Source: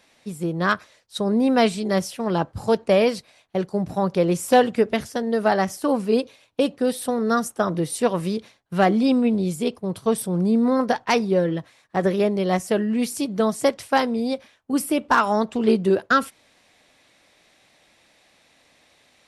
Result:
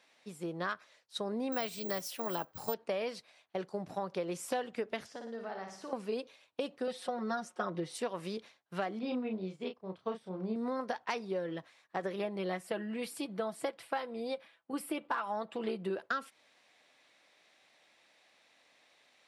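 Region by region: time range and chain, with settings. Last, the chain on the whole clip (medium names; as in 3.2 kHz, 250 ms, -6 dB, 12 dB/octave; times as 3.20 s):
1.52–2.74 s: treble shelf 4.3 kHz +6 dB + careless resampling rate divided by 2×, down none, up zero stuff
5.06–5.93 s: compression 5:1, threshold -31 dBFS + distance through air 86 m + flutter echo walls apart 9.7 m, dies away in 0.6 s
6.87–7.95 s: distance through air 77 m + comb 5.5 ms, depth 98%
8.99–10.56 s: low-pass 3.4 kHz + doubling 32 ms -5 dB + upward expansion, over -38 dBFS
12.15–15.96 s: peaking EQ 6.2 kHz -12 dB 0.55 oct + comb 6 ms, depth 44%
whole clip: high-pass 570 Hz 6 dB/octave; treble shelf 8.5 kHz -12 dB; compression 6:1, threshold -26 dBFS; trim -6 dB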